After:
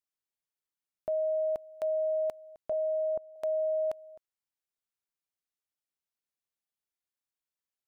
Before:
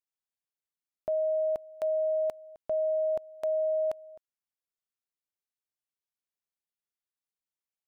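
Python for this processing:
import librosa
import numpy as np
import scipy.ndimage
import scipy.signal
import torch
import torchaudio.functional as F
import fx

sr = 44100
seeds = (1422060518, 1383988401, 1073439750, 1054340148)

y = fx.lowpass(x, sr, hz=1000.0, slope=12, at=(2.72, 3.36))
y = y * librosa.db_to_amplitude(-1.5)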